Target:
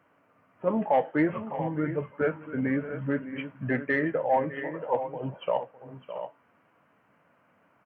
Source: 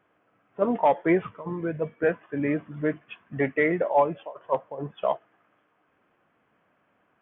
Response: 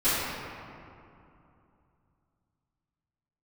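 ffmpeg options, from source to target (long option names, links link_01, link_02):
-filter_complex "[0:a]highpass=82,equalizer=frequency=420:width_type=o:width=0.26:gain=-7.5,aecho=1:1:558|625:0.15|0.211,asplit=2[link_01][link_02];[link_02]acompressor=threshold=-36dB:ratio=6,volume=1dB[link_03];[link_01][link_03]amix=inputs=2:normalize=0,asetrate=40517,aresample=44100,acontrast=35,flanger=delay=6.1:depth=4.6:regen=-78:speed=0.57:shape=triangular,volume=-4dB"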